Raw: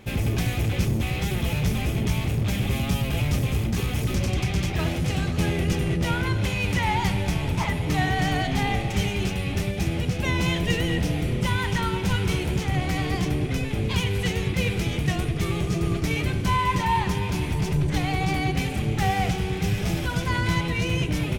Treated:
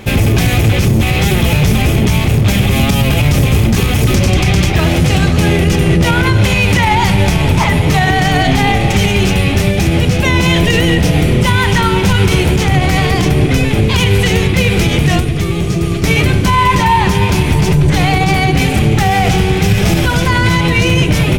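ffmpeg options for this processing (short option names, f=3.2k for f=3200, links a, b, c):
-filter_complex "[0:a]asettb=1/sr,asplit=3[a][b][c];[a]atrim=end=15.194[d];[b]atrim=start=15.19:end=16.04,asetpts=PTS-STARTPTS,afade=t=in:d=0.004:c=qsin,afade=t=out:st=0.846:d=0.004:c=qsin,acrossover=split=480|2100[e][f][g];[e]acompressor=threshold=-27dB:ratio=4[h];[f]acompressor=threshold=-46dB:ratio=4[i];[g]acompressor=threshold=-44dB:ratio=4[j];[h][i][j]amix=inputs=3:normalize=0[k];[c]atrim=start=16.036[l];[d][k]acrossfade=d=0.004:c1=hsin:c2=qsin[m];[m][l]acrossfade=d=0.004:c1=qsin:c2=hsin,bandreject=f=60:t=h:w=6,bandreject=f=120:t=h:w=6,bandreject=f=180:t=h:w=6,bandreject=f=240:t=h:w=6,bandreject=f=300:t=h:w=6,alimiter=level_in=17dB:limit=-1dB:release=50:level=0:latency=1,volume=-1dB"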